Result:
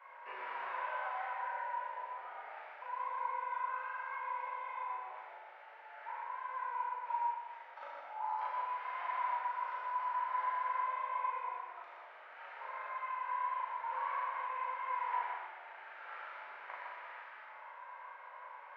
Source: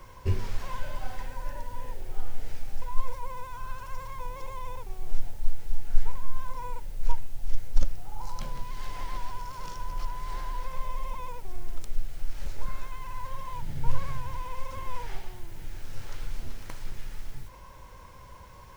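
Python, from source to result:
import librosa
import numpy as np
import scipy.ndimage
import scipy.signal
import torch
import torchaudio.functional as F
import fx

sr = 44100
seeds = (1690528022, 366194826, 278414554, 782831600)

y = scipy.signal.sosfilt(scipy.signal.butter(4, 2000.0, 'lowpass', fs=sr, output='sos'), x)
y = fx.spec_gate(y, sr, threshold_db=-10, keep='weak')
y = scipy.signal.sosfilt(scipy.signal.butter(4, 770.0, 'highpass', fs=sr, output='sos'), y)
y = fx.doubler(y, sr, ms=37.0, db=-2.5)
y = y + 10.0 ** (-5.5 / 20.0) * np.pad(y, (int(120 * sr / 1000.0), 0))[:len(y)]
y = fx.rev_gated(y, sr, seeds[0], gate_ms=490, shape='falling', drr_db=-4.5)
y = y * librosa.db_to_amplitude(-1.5)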